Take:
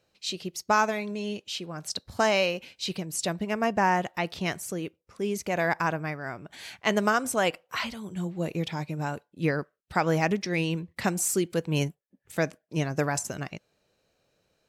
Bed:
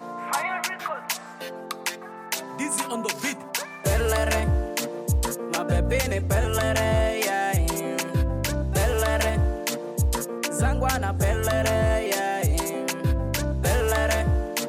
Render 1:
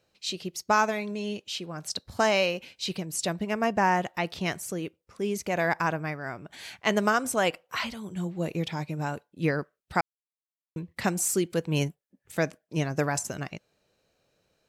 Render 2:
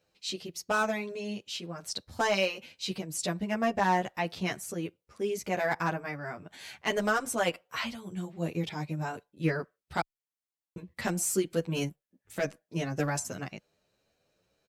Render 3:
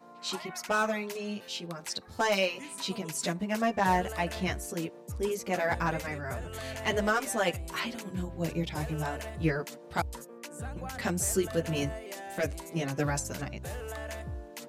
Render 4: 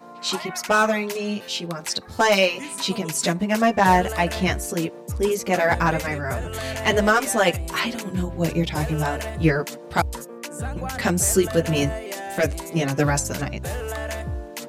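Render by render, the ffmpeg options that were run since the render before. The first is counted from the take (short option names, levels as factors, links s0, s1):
-filter_complex "[0:a]asplit=3[s0][s1][s2];[s0]atrim=end=10.01,asetpts=PTS-STARTPTS,afade=t=out:st=10.006:d=0.004:c=hsin[s3];[s1]atrim=start=10.01:end=10.76,asetpts=PTS-STARTPTS,volume=0[s4];[s2]atrim=start=10.76,asetpts=PTS-STARTPTS,afade=t=in:d=0.004:c=hsin[s5];[s3][s4][s5]concat=n=3:v=0:a=1"
-filter_complex "[0:a]volume=6.68,asoftclip=hard,volume=0.15,asplit=2[s0][s1];[s1]adelay=9.9,afreqshift=1.9[s2];[s0][s2]amix=inputs=2:normalize=1"
-filter_complex "[1:a]volume=0.15[s0];[0:a][s0]amix=inputs=2:normalize=0"
-af "volume=2.99"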